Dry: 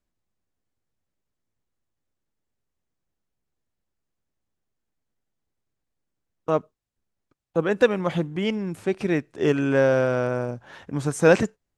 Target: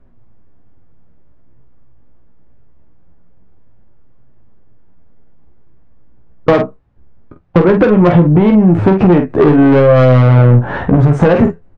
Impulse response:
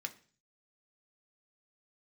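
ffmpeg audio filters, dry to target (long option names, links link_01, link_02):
-af "lowpass=1300,lowshelf=frequency=230:gain=8,acompressor=threshold=-24dB:ratio=16,flanger=delay=7.4:depth=10:regen=49:speed=0.24:shape=triangular,asoftclip=type=tanh:threshold=-32.5dB,aecho=1:1:17|47:0.376|0.398,alimiter=level_in=31dB:limit=-1dB:release=50:level=0:latency=1,volume=-1dB"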